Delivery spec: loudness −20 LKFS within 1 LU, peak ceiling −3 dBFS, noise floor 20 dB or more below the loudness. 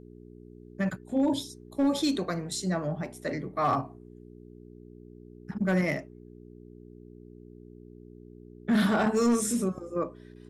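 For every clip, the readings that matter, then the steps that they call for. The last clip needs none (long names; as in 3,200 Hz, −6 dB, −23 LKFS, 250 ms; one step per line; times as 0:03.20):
share of clipped samples 0.4%; peaks flattened at −18.5 dBFS; mains hum 60 Hz; hum harmonics up to 420 Hz; level of the hum −47 dBFS; integrated loudness −29.0 LKFS; sample peak −18.5 dBFS; target loudness −20.0 LKFS
→ clipped peaks rebuilt −18.5 dBFS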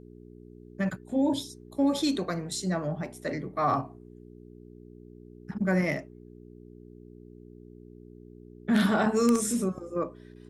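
share of clipped samples 0.0%; mains hum 60 Hz; hum harmonics up to 420 Hz; level of the hum −47 dBFS
→ hum removal 60 Hz, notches 7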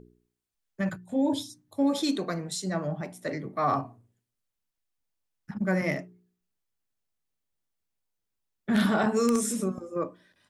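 mains hum none found; integrated loudness −29.0 LKFS; sample peak −11.0 dBFS; target loudness −20.0 LKFS
→ level +9 dB
brickwall limiter −3 dBFS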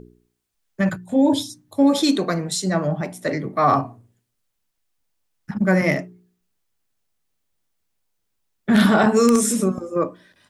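integrated loudness −20.0 LKFS; sample peak −3.0 dBFS; background noise floor −74 dBFS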